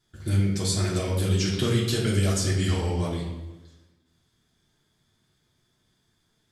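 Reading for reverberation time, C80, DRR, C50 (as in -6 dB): 1.1 s, 5.0 dB, -7.0 dB, 3.0 dB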